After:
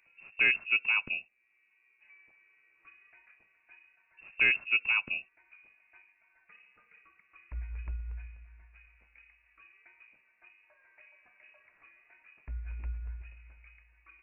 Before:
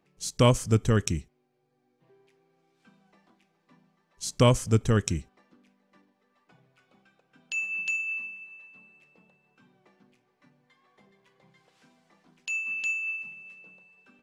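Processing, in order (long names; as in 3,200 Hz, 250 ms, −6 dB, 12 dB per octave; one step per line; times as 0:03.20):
voice inversion scrambler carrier 2,700 Hz
one half of a high-frequency compander encoder only
level −6 dB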